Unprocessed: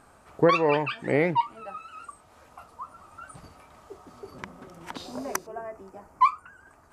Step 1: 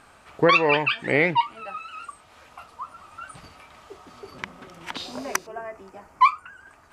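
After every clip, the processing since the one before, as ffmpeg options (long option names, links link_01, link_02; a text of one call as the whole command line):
ffmpeg -i in.wav -af "equalizer=frequency=2900:width_type=o:width=2:gain=10.5" out.wav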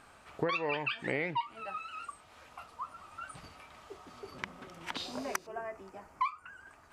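ffmpeg -i in.wav -af "acompressor=threshold=-25dB:ratio=5,volume=-5dB" out.wav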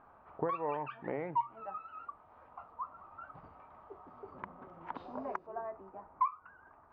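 ffmpeg -i in.wav -af "lowpass=frequency=1000:width_type=q:width=1.9,bandreject=frequency=64.55:width_type=h:width=4,bandreject=frequency=129.1:width_type=h:width=4,volume=-4dB" out.wav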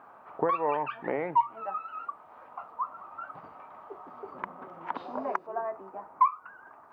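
ffmpeg -i in.wav -af "highpass=160,lowshelf=frequency=400:gain=-5,volume=9dB" out.wav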